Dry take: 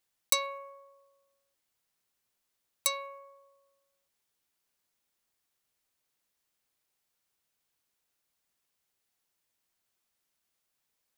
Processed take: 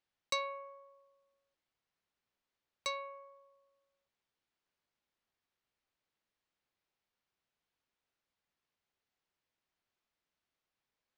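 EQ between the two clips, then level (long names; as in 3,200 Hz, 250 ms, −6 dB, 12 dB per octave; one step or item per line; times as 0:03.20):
high-frequency loss of the air 160 metres
−2.0 dB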